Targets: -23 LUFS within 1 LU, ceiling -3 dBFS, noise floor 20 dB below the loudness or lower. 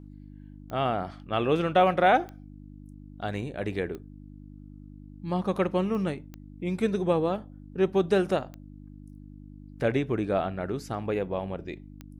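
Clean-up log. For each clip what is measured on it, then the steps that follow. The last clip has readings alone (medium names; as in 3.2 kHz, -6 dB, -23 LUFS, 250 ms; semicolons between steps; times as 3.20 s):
clicks found 7; hum 50 Hz; highest harmonic 300 Hz; hum level -44 dBFS; loudness -28.0 LUFS; peak level -10.0 dBFS; loudness target -23.0 LUFS
-> de-click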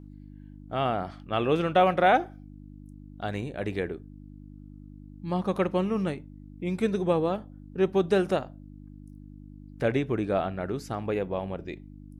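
clicks found 0; hum 50 Hz; highest harmonic 300 Hz; hum level -44 dBFS
-> de-hum 50 Hz, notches 6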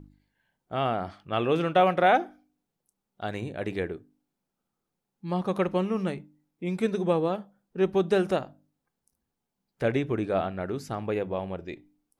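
hum not found; loudness -28.0 LUFS; peak level -10.0 dBFS; loudness target -23.0 LUFS
-> trim +5 dB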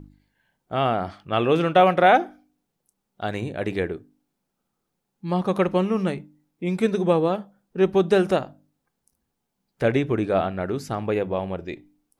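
loudness -23.0 LUFS; peak level -5.0 dBFS; noise floor -79 dBFS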